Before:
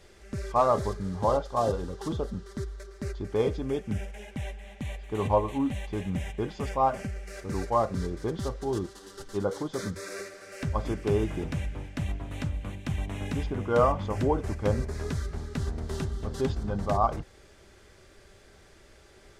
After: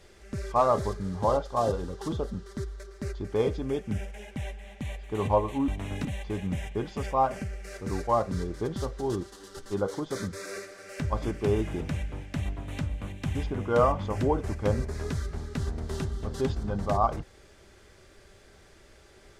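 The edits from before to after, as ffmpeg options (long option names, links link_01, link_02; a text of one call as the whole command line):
ffmpeg -i in.wav -filter_complex "[0:a]asplit=4[link_01][link_02][link_03][link_04];[link_01]atrim=end=5.682[link_05];[link_02]atrim=start=12.978:end=13.352[link_06];[link_03]atrim=start=5.678:end=12.982[link_07];[link_04]atrim=start=13.348[link_08];[link_05][link_06]acrossfade=duration=0.004:curve1=hsin:curve2=hsin[link_09];[link_09][link_07]acrossfade=duration=0.004:curve1=hsin:curve2=hsin[link_10];[link_10][link_08]acrossfade=duration=0.004:curve1=hsin:curve2=hsin" out.wav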